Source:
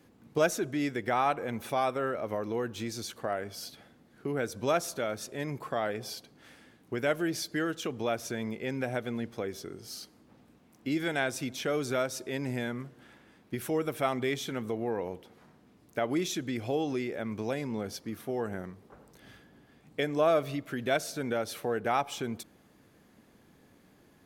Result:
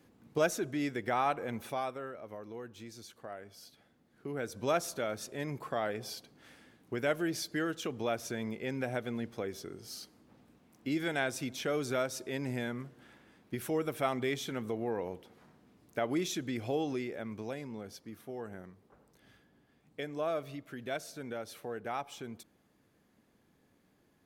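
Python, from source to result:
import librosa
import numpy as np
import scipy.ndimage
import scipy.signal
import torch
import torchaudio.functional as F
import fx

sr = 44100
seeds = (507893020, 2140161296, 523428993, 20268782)

y = fx.gain(x, sr, db=fx.line((1.56, -3.0), (2.13, -12.0), (3.69, -12.0), (4.73, -2.5), (16.82, -2.5), (17.81, -9.0)))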